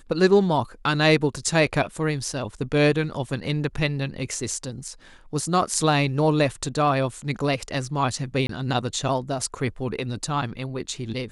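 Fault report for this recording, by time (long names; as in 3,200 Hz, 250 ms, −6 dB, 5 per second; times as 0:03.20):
0:08.47–0:08.49: drop-out 23 ms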